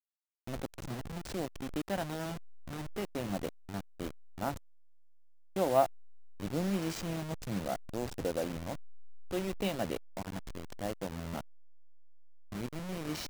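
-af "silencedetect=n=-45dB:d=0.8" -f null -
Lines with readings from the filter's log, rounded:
silence_start: 4.57
silence_end: 5.56 | silence_duration: 0.99
silence_start: 11.41
silence_end: 12.52 | silence_duration: 1.12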